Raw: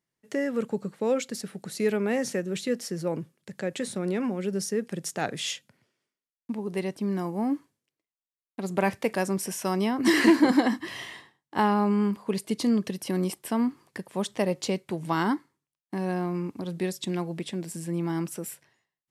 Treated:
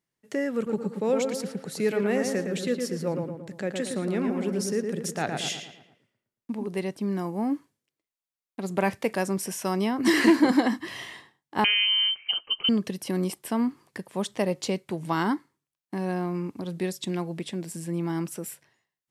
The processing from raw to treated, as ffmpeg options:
ffmpeg -i in.wav -filter_complex "[0:a]asettb=1/sr,asplit=3[link_01][link_02][link_03];[link_01]atrim=end=0.554[link_04];[link_02]atrim=start=0.55:end=6.67,asetpts=PTS-STARTPTS,afade=type=in:duration=0.004:curve=qsin,afade=type=out:start_time=6.116:duration=0.004:curve=qsin,asplit=2[link_05][link_06];[link_06]adelay=113,lowpass=frequency=2300:poles=1,volume=-4dB,asplit=2[link_07][link_08];[link_08]adelay=113,lowpass=frequency=2300:poles=1,volume=0.5,asplit=2[link_09][link_10];[link_10]adelay=113,lowpass=frequency=2300:poles=1,volume=0.5,asplit=2[link_11][link_12];[link_12]adelay=113,lowpass=frequency=2300:poles=1,volume=0.5,asplit=2[link_13][link_14];[link_14]adelay=113,lowpass=frequency=2300:poles=1,volume=0.5,asplit=2[link_15][link_16];[link_16]adelay=113,lowpass=frequency=2300:poles=1,volume=0.5[link_17];[link_05][link_07][link_09][link_11][link_13][link_15][link_17]amix=inputs=7:normalize=0,atrim=end_sample=269892[link_18];[link_03]atrim=start=6.666[link_19];[link_04][link_18]acrossfade=duration=0.004:curve1=hsin:curve2=qsin[link_20];[link_20][link_19]acrossfade=duration=0.004:curve1=qsin:curve2=hsin,asettb=1/sr,asplit=3[link_21][link_22][link_23];[link_21]atrim=end=11.644[link_24];[link_22]atrim=start=11.64:end=12.69,asetpts=PTS-STARTPTS,afade=type=in:duration=0.004:curve=qsin,afade=type=out:start_time=1.046:duration=0.004:curve=qsin,lowpass=frequency=2800:width_type=q:width=0.5098,lowpass=frequency=2800:width_type=q:width=0.6013,lowpass=frequency=2800:width_type=q:width=0.9,lowpass=frequency=2800:width_type=q:width=2.563,afreqshift=-3300[link_25];[link_23]atrim=start=12.686[link_26];[link_24][link_25]acrossfade=duration=0.004:curve1=hsin:curve2=qsin[link_27];[link_27][link_26]acrossfade=duration=0.004:curve1=qsin:curve2=hsin" out.wav

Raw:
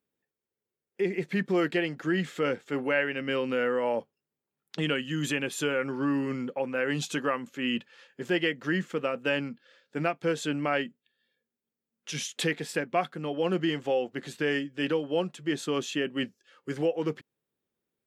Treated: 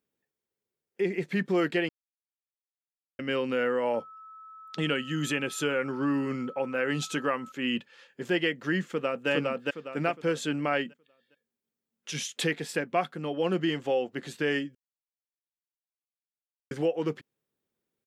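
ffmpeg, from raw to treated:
ffmpeg -i in.wav -filter_complex "[0:a]asettb=1/sr,asplit=3[link_01][link_02][link_03];[link_01]atrim=end=3.944[link_04];[link_02]atrim=start=3.94:end=7.52,asetpts=PTS-STARTPTS,afade=type=in:duration=0.004:curve=qsin,afade=type=out:start_time=3.576:duration=0.004:curve=qsin,aeval=exprs='val(0)+0.00562*sin(2*PI*1300*n/s)':channel_layout=same[link_05];[link_03]atrim=start=7.516[link_06];[link_04][link_05]acrossfade=duration=0.004:curve1=hsin:curve2=qsin[link_07];[link_07][link_06]acrossfade=duration=0.004:curve1=qsin:curve2=hsin,asplit=2[link_08][link_09];[link_09]afade=type=in:start_time=8.85:duration=0.01,afade=type=out:start_time=9.29:duration=0.01,aecho=0:1:410|820|1230|1640|2050:0.891251|0.311938|0.109178|0.0382124|0.0133743[link_10];[link_08][link_10]amix=inputs=2:normalize=0,asplit=5[link_11][link_12][link_13][link_14][link_15];[link_11]atrim=end=1.89,asetpts=PTS-STARTPTS,afade=type=out:start_time=1.886:duration=0.004:curve=hsin[link_16];[link_12]atrim=start=1.89:end=3.19,asetpts=PTS-STARTPTS,volume=0[link_17];[link_13]atrim=start=3.19:end=14.75,asetpts=PTS-STARTPTS,afade=type=in:duration=0.004:curve=hsin,afade=type=out:start_time=11.556:duration=0.004:curve=hsin[link_18];[link_14]atrim=start=14.75:end=16.71,asetpts=PTS-STARTPTS,volume=0[link_19];[link_15]atrim=start=16.71,asetpts=PTS-STARTPTS,afade=type=in:duration=0.004:curve=hsin[link_20];[link_16][link_17][link_18][link_19][link_20]concat=n=5:v=0:a=1" out.wav

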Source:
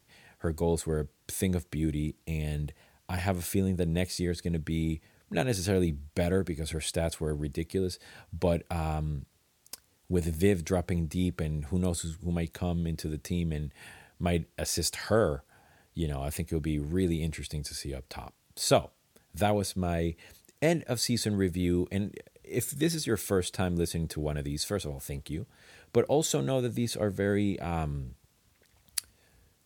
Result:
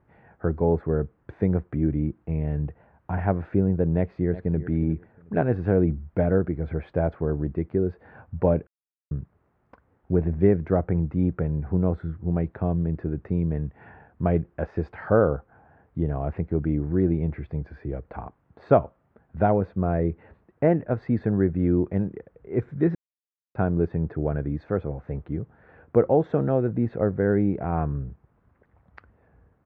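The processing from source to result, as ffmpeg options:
ffmpeg -i in.wav -filter_complex "[0:a]asplit=2[link_01][link_02];[link_02]afade=type=in:start_time=3.97:duration=0.01,afade=type=out:start_time=4.67:duration=0.01,aecho=0:1:360|720:0.188365|0.037673[link_03];[link_01][link_03]amix=inputs=2:normalize=0,asplit=5[link_04][link_05][link_06][link_07][link_08];[link_04]atrim=end=8.67,asetpts=PTS-STARTPTS,afade=type=out:start_time=8.666:duration=0.004:curve=hsin[link_09];[link_05]atrim=start=8.67:end=9.11,asetpts=PTS-STARTPTS,volume=0[link_10];[link_06]atrim=start=9.11:end=22.95,asetpts=PTS-STARTPTS,afade=type=in:duration=0.004:curve=hsin,afade=type=out:start_time=13.836:duration=0.004:curve=hsin[link_11];[link_07]atrim=start=22.95:end=23.55,asetpts=PTS-STARTPTS,volume=0[link_12];[link_08]atrim=start=23.55,asetpts=PTS-STARTPTS,afade=type=in:duration=0.004:curve=hsin[link_13];[link_09][link_10][link_11][link_12][link_13]concat=n=5:v=0:a=1,lowpass=frequency=1500:width=0.5412,lowpass=frequency=1500:width=1.3066,volume=6dB" out.wav

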